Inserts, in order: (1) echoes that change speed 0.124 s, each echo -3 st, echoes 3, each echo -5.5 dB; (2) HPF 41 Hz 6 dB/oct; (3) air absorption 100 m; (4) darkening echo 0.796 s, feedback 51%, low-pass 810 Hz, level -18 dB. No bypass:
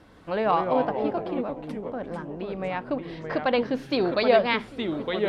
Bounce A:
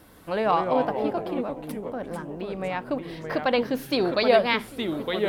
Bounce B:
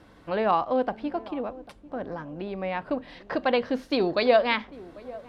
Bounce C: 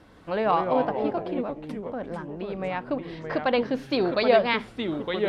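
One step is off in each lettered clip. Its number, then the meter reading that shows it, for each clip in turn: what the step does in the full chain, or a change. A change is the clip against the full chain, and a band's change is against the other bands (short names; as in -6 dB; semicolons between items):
3, 4 kHz band +2.0 dB; 1, 125 Hz band -4.0 dB; 4, echo-to-direct -23.0 dB to none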